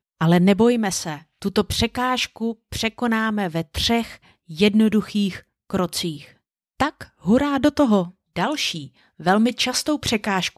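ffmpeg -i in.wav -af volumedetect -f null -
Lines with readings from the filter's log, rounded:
mean_volume: -21.5 dB
max_volume: -3.8 dB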